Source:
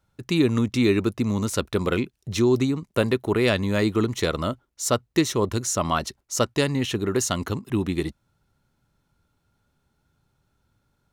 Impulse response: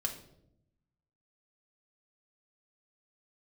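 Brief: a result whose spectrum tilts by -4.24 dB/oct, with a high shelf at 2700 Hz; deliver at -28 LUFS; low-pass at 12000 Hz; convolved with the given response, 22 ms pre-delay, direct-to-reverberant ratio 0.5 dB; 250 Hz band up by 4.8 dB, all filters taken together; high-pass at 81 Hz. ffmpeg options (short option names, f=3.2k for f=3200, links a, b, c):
-filter_complex "[0:a]highpass=81,lowpass=12k,equalizer=f=250:t=o:g=6,highshelf=f=2.7k:g=8.5,asplit=2[a][b];[1:a]atrim=start_sample=2205,adelay=22[c];[b][c]afir=irnorm=-1:irlink=0,volume=-2.5dB[d];[a][d]amix=inputs=2:normalize=0,volume=-10.5dB"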